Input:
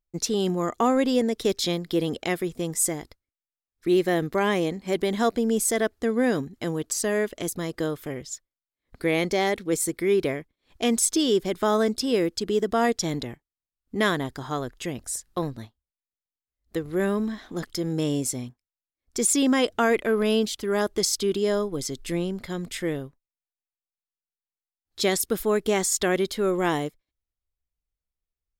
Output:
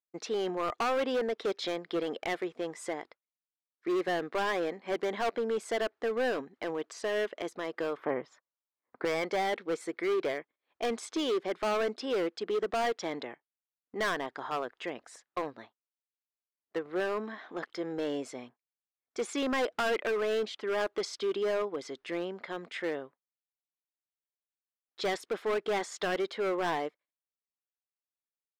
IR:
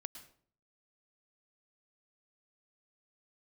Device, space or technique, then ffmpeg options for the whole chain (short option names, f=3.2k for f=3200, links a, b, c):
walkie-talkie: -filter_complex "[0:a]highpass=540,lowpass=2.2k,asoftclip=type=hard:threshold=-27.5dB,agate=range=-10dB:threshold=-58dB:ratio=16:detection=peak,asettb=1/sr,asplit=3[a][b][c];[a]atrim=end=7.974[d];[b]atrim=start=7.97:end=9.05,asetpts=PTS-STARTPTS,afade=t=in:d=0.004:c=qsin,afade=t=out:st=1.076:d=0.004:c=qsin,equalizer=f=125:t=o:w=1:g=9,equalizer=f=250:t=o:w=1:g=6,equalizer=f=500:t=o:w=1:g=3,equalizer=f=1k:t=o:w=1:g=10,equalizer=f=4k:t=o:w=1:g=-5,equalizer=f=8k:t=o:w=1:g=-11[e];[c]atrim=start=9.046[f];[d][e]acrossfade=d=0.004:c1=hsin:c2=qsin[g];[g][f]acrossfade=d=0.004:c1=qsin:c2=hsin,volume=1.5dB"